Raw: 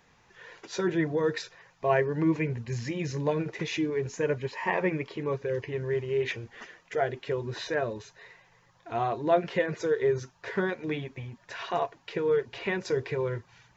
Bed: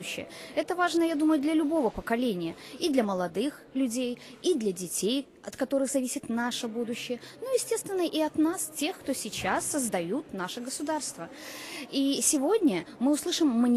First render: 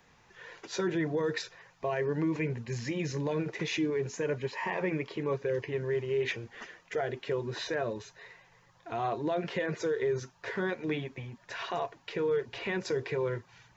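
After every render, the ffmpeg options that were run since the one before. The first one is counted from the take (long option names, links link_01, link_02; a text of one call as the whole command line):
ffmpeg -i in.wav -filter_complex "[0:a]acrossover=split=120|3400[link_01][link_02][link_03];[link_01]acompressor=threshold=-52dB:ratio=6[link_04];[link_02]alimiter=limit=-23dB:level=0:latency=1:release=35[link_05];[link_04][link_05][link_03]amix=inputs=3:normalize=0" out.wav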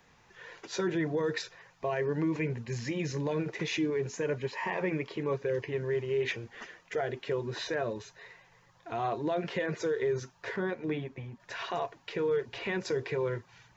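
ffmpeg -i in.wav -filter_complex "[0:a]asettb=1/sr,asplit=3[link_01][link_02][link_03];[link_01]atrim=end=10.564[link_04];[link_02]atrim=start=10.56:end=11.4,asetpts=PTS-STARTPTS,afade=type=in:duration=0.004:curve=qsin,afade=type=out:start_time=0.836:duration=0.004:curve=qsin,highshelf=frequency=2000:gain=-7.5[link_05];[link_03]atrim=start=11.396[link_06];[link_04][link_05]acrossfade=duration=0.004:curve1=hsin:curve2=qsin[link_07];[link_07][link_06]acrossfade=duration=0.004:curve1=qsin:curve2=hsin" out.wav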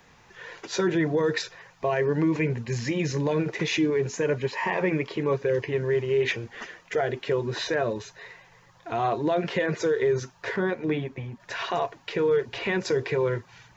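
ffmpeg -i in.wav -af "volume=6.5dB" out.wav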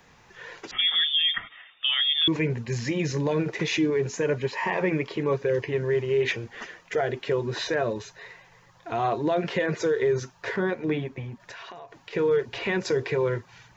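ffmpeg -i in.wav -filter_complex "[0:a]asettb=1/sr,asplit=3[link_01][link_02][link_03];[link_01]atrim=end=0.714[link_04];[link_02]atrim=start=0.71:end=2.28,asetpts=PTS-STARTPTS,afade=type=in:duration=0.004:curve=qsin,afade=type=out:start_time=1.566:duration=0.004:curve=qsin,lowpass=frequency=3100:width_type=q:width=0.5098,lowpass=frequency=3100:width_type=q:width=0.6013,lowpass=frequency=3100:width_type=q:width=0.9,lowpass=frequency=3100:width_type=q:width=2.563,afreqshift=-3700[link_05];[link_03]atrim=start=2.276[link_06];[link_04][link_05]acrossfade=duration=0.004:curve1=hsin:curve2=qsin[link_07];[link_07][link_06]acrossfade=duration=0.004:curve1=qsin:curve2=hsin,asettb=1/sr,asplit=3[link_08][link_09][link_10];[link_08]atrim=end=11.444[link_11];[link_09]atrim=start=11.44:end=12.13,asetpts=PTS-STARTPTS,afade=type=in:duration=0.004:curve=qsin,afade=type=out:start_time=0.686:duration=0.004:curve=qsin,acompressor=threshold=-38dB:ratio=12:attack=3.2:release=140:knee=1:detection=peak[link_12];[link_10]atrim=start=12.126[link_13];[link_11][link_12]acrossfade=duration=0.004:curve1=hsin:curve2=qsin[link_14];[link_14][link_13]acrossfade=duration=0.004:curve1=qsin:curve2=hsin" out.wav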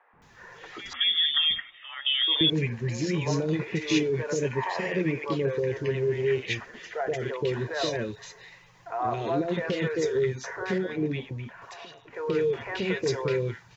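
ffmpeg -i in.wav -filter_complex "[0:a]acrossover=split=550|1800[link_01][link_02][link_03];[link_01]adelay=130[link_04];[link_03]adelay=220[link_05];[link_04][link_02][link_05]amix=inputs=3:normalize=0" out.wav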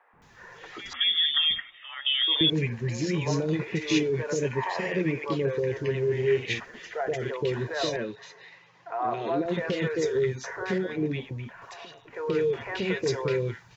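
ffmpeg -i in.wav -filter_complex "[0:a]asettb=1/sr,asplit=3[link_01][link_02][link_03];[link_01]atrim=end=6.064[link_04];[link_02]atrim=start=6.06:end=6.6,asetpts=PTS-STARTPTS,afade=type=in:duration=0.004:curve=qsin,afade=type=out:start_time=0.536:duration=0.004:curve=qsin,asplit=2[link_05][link_06];[link_06]adelay=47,volume=-8dB[link_07];[link_05][link_07]amix=inputs=2:normalize=0,atrim=end_sample=23814[link_08];[link_03]atrim=start=6.596[link_09];[link_04][link_08]acrossfade=duration=0.004:curve1=hsin:curve2=qsin[link_10];[link_10][link_09]acrossfade=duration=0.004:curve1=qsin:curve2=hsin,asettb=1/sr,asplit=3[link_11][link_12][link_13];[link_11]atrim=end=7.964[link_14];[link_12]atrim=start=7.96:end=9.46,asetpts=PTS-STARTPTS,afade=type=in:duration=0.004:curve=qsin,afade=type=out:start_time=1.496:duration=0.004:curve=qsin,highpass=180,lowpass=4500[link_15];[link_13]atrim=start=9.456[link_16];[link_14][link_15]acrossfade=duration=0.004:curve1=hsin:curve2=qsin[link_17];[link_17][link_16]acrossfade=duration=0.004:curve1=qsin:curve2=hsin" out.wav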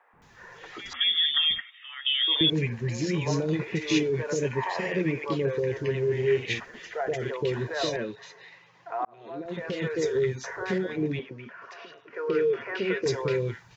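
ffmpeg -i in.wav -filter_complex "[0:a]asettb=1/sr,asplit=3[link_01][link_02][link_03];[link_01]atrim=end=1.614[link_04];[link_02]atrim=start=1.61:end=2.25,asetpts=PTS-STARTPTS,afade=type=in:duration=0.004:curve=qsin,afade=type=out:start_time=0.636:duration=0.004:curve=qsin,highpass=1400[link_05];[link_03]atrim=start=2.246[link_06];[link_04][link_05]acrossfade=duration=0.004:curve1=hsin:curve2=qsin[link_07];[link_07][link_06]acrossfade=duration=0.004:curve1=qsin:curve2=hsin,asettb=1/sr,asplit=3[link_08][link_09][link_10];[link_08]atrim=end=11.194[link_11];[link_09]atrim=start=11.19:end=13.06,asetpts=PTS-STARTPTS,afade=type=in:duration=0.004:curve=qsin,afade=type=out:start_time=1.866:duration=0.004:curve=qsin,highpass=220,equalizer=frequency=400:width_type=q:width=4:gain=4,equalizer=frequency=830:width_type=q:width=4:gain=-9,equalizer=frequency=1400:width_type=q:width=4:gain=6,equalizer=frequency=3800:width_type=q:width=4:gain=-8,lowpass=frequency=5400:width=0.5412,lowpass=frequency=5400:width=1.3066[link_12];[link_10]atrim=start=13.056[link_13];[link_11][link_12]acrossfade=duration=0.004:curve1=hsin:curve2=qsin[link_14];[link_14][link_13]acrossfade=duration=0.004:curve1=qsin:curve2=hsin,asplit=2[link_15][link_16];[link_15]atrim=end=9.05,asetpts=PTS-STARTPTS,afade=type=out:start_time=9.046:duration=0.004:curve=hsin[link_17];[link_16]atrim=start=9.05,asetpts=PTS-STARTPTS,afade=type=in:duration=1.01[link_18];[link_17][link_18]concat=n=2:v=0:a=1" out.wav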